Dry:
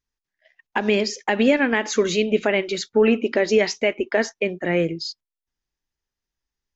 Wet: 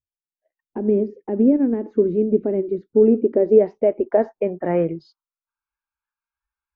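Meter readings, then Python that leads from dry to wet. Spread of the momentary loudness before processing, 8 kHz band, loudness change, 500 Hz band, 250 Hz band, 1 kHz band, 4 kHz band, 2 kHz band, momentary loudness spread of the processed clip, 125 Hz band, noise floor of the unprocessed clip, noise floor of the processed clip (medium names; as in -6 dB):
7 LU, no reading, +1.5 dB, +2.5 dB, +3.0 dB, -5.0 dB, under -30 dB, under -20 dB, 10 LU, +1.5 dB, under -85 dBFS, under -85 dBFS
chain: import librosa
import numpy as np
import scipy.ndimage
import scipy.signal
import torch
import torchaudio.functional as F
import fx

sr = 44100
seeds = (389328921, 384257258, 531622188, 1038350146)

y = fx.filter_sweep_lowpass(x, sr, from_hz=350.0, to_hz=1700.0, start_s=2.9, end_s=5.75, q=1.8)
y = fx.noise_reduce_blind(y, sr, reduce_db=21)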